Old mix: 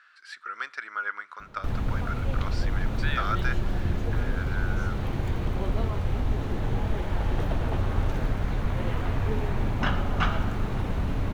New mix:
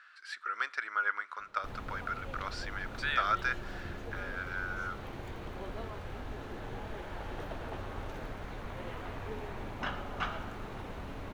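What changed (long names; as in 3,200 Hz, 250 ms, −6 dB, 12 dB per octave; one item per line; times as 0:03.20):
background −7.5 dB
master: add bass and treble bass −10 dB, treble −1 dB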